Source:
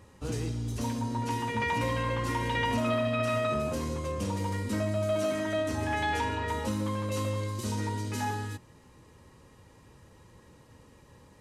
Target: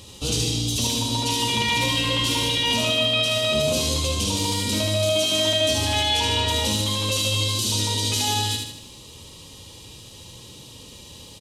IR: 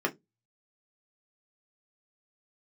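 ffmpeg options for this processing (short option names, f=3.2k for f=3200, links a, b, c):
-filter_complex "[0:a]highshelf=f=2.4k:t=q:w=3:g=11.5,alimiter=limit=-22.5dB:level=0:latency=1:release=31,asplit=2[a][b];[b]aecho=0:1:75|150|225|300|375|450:0.631|0.303|0.145|0.0698|0.0335|0.0161[c];[a][c]amix=inputs=2:normalize=0,volume=7.5dB"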